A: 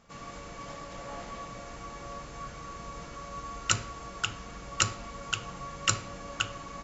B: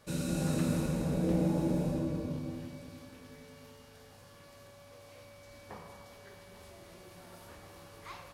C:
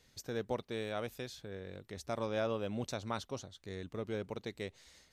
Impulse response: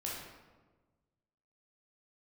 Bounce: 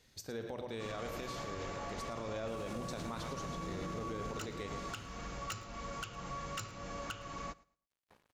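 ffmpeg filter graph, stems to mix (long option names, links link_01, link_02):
-filter_complex "[0:a]equalizer=frequency=8700:width_type=o:width=0.26:gain=-10,acompressor=threshold=-38dB:ratio=4,asoftclip=type=tanh:threshold=-34.5dB,adelay=700,volume=1.5dB,asplit=2[link_01][link_02];[link_02]volume=-22.5dB[link_03];[1:a]aeval=exprs='sgn(val(0))*max(abs(val(0))-0.00531,0)':channel_layout=same,adelay=2400,volume=-12dB[link_04];[2:a]bandreject=frequency=60:width_type=h:width=6,bandreject=frequency=120:width_type=h:width=6,volume=-2dB,asplit=3[link_05][link_06][link_07];[link_06]volume=-7dB[link_08];[link_07]volume=-8.5dB[link_09];[3:a]atrim=start_sample=2205[link_10];[link_08][link_10]afir=irnorm=-1:irlink=0[link_11];[link_03][link_09]amix=inputs=2:normalize=0,aecho=0:1:111|222|333:1|0.2|0.04[link_12];[link_01][link_04][link_05][link_11][link_12]amix=inputs=5:normalize=0,alimiter=level_in=8dB:limit=-24dB:level=0:latency=1:release=51,volume=-8dB"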